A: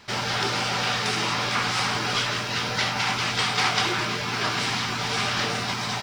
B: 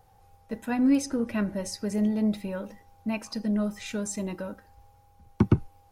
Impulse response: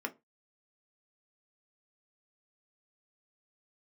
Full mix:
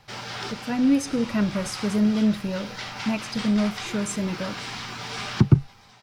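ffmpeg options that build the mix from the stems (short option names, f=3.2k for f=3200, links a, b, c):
-filter_complex "[0:a]volume=-8.5dB[a];[1:a]equalizer=f=140:w=3.4:g=15,volume=-2dB,asplit=2[b][c];[c]apad=whole_len=265507[d];[a][d]sidechaincompress=threshold=-34dB:ratio=3:attack=6.9:release=1420[e];[e][b]amix=inputs=2:normalize=0,dynaudnorm=f=310:g=5:m=4.5dB"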